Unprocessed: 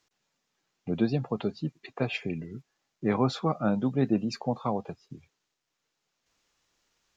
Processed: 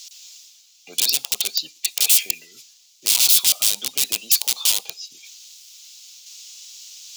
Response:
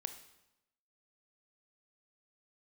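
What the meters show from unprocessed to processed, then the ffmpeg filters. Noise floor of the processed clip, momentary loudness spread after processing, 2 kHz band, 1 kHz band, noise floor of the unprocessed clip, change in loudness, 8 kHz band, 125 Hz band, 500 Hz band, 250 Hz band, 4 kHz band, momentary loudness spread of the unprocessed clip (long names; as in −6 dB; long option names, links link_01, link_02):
−54 dBFS, 15 LU, +8.5 dB, −9.5 dB, −82 dBFS, +12.5 dB, can't be measured, below −20 dB, −15.0 dB, −22.5 dB, +23.5 dB, 15 LU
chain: -filter_complex "[0:a]highpass=950,equalizer=frequency=1300:width_type=o:width=1.5:gain=-2.5,acontrast=75,aeval=exprs='(mod(29.9*val(0)+1,2)-1)/29.9':channel_layout=same,areverse,acompressor=mode=upward:threshold=-52dB:ratio=2.5,areverse,aexciter=amount=12:drive=6:freq=2600,asplit=2[link_01][link_02];[1:a]atrim=start_sample=2205,atrim=end_sample=6174[link_03];[link_02][link_03]afir=irnorm=-1:irlink=0,volume=-10.5dB[link_04];[link_01][link_04]amix=inputs=2:normalize=0,volume=-4.5dB"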